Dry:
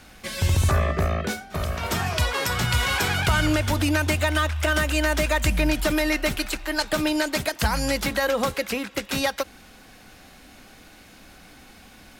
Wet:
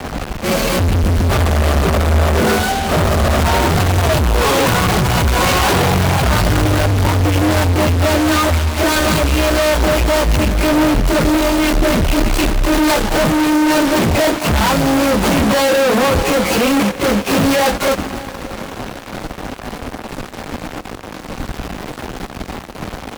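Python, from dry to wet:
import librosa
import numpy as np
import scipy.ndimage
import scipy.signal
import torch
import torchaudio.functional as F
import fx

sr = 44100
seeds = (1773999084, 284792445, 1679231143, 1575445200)

p1 = scipy.signal.medfilt(x, 25)
p2 = fx.over_compress(p1, sr, threshold_db=-30.0, ratio=-0.5)
p3 = p1 + (p2 * 10.0 ** (-1.0 / 20.0))
p4 = fx.stretch_vocoder_free(p3, sr, factor=1.9)
p5 = fx.fuzz(p4, sr, gain_db=48.0, gate_db=-42.0)
p6 = fx.echo_diffused(p5, sr, ms=666, feedback_pct=41, wet_db=-14.0)
p7 = fx.band_widen(p6, sr, depth_pct=40)
y = p7 * 10.0 ** (1.0 / 20.0)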